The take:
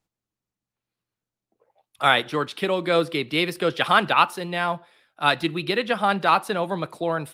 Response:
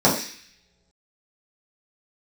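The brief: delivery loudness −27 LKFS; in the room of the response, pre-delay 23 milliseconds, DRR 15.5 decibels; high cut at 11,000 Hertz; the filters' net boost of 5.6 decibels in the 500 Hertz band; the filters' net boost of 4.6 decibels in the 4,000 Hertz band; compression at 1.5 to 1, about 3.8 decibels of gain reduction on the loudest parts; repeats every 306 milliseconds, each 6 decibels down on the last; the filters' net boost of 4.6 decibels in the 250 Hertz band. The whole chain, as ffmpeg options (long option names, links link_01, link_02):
-filter_complex "[0:a]lowpass=11000,equalizer=frequency=250:width_type=o:gain=4.5,equalizer=frequency=500:width_type=o:gain=5.5,equalizer=frequency=4000:width_type=o:gain=5.5,acompressor=threshold=-20dB:ratio=1.5,aecho=1:1:306|612|918|1224|1530|1836:0.501|0.251|0.125|0.0626|0.0313|0.0157,asplit=2[link_01][link_02];[1:a]atrim=start_sample=2205,adelay=23[link_03];[link_02][link_03]afir=irnorm=-1:irlink=0,volume=-36dB[link_04];[link_01][link_04]amix=inputs=2:normalize=0,volume=-6.5dB"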